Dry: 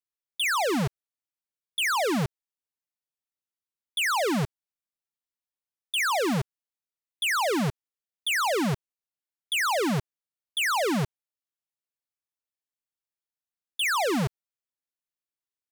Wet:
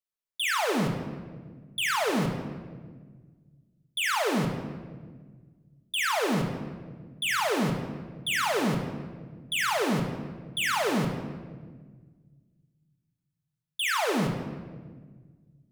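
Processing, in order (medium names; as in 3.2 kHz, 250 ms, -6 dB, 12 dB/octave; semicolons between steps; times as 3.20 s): simulated room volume 1600 m³, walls mixed, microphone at 1.5 m; trim -3.5 dB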